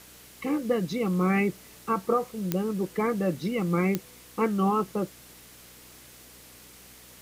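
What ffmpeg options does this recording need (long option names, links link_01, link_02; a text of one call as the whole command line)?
ffmpeg -i in.wav -af "adeclick=threshold=4,bandreject=frequency=61.5:width_type=h:width=4,bandreject=frequency=123:width_type=h:width=4,bandreject=frequency=184.5:width_type=h:width=4,bandreject=frequency=246:width_type=h:width=4,bandreject=frequency=307.5:width_type=h:width=4,afwtdn=0.0032" out.wav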